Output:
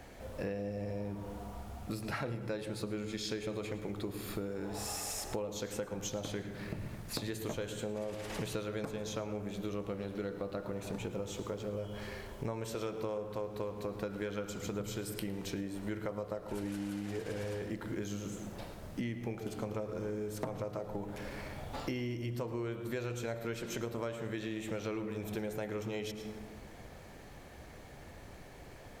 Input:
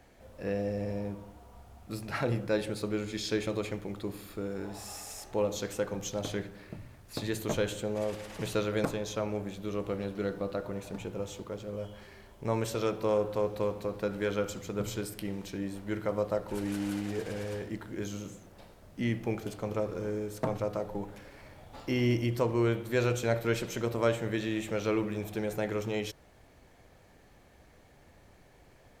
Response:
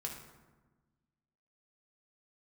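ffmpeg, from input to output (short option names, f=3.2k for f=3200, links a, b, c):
-filter_complex "[0:a]asplit=2[a][b];[1:a]atrim=start_sample=2205,adelay=109[c];[b][c]afir=irnorm=-1:irlink=0,volume=-12dB[d];[a][d]amix=inputs=2:normalize=0,acompressor=threshold=-42dB:ratio=10,volume=7dB"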